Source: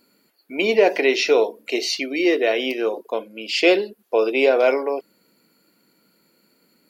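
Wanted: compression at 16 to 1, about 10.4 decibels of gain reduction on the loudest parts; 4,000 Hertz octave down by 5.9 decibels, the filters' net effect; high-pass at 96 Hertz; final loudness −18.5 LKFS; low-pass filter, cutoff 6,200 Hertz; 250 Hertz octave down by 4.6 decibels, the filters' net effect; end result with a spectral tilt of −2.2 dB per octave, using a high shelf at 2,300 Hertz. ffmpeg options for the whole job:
ffmpeg -i in.wav -af "highpass=96,lowpass=6200,equalizer=frequency=250:width_type=o:gain=-7.5,highshelf=frequency=2300:gain=-3.5,equalizer=frequency=4000:width_type=o:gain=-4,acompressor=threshold=-23dB:ratio=16,volume=10.5dB" out.wav

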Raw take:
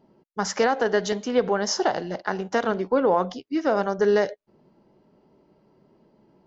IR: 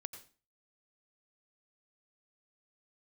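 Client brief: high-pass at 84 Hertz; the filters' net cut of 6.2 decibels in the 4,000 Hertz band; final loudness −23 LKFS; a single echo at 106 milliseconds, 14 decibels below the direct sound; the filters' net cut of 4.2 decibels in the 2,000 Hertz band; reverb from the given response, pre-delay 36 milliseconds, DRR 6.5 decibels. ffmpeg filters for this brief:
-filter_complex "[0:a]highpass=84,equalizer=frequency=2000:width_type=o:gain=-4,equalizer=frequency=4000:width_type=o:gain=-8.5,aecho=1:1:106:0.2,asplit=2[link_01][link_02];[1:a]atrim=start_sample=2205,adelay=36[link_03];[link_02][link_03]afir=irnorm=-1:irlink=0,volume=-3dB[link_04];[link_01][link_04]amix=inputs=2:normalize=0,volume=0.5dB"

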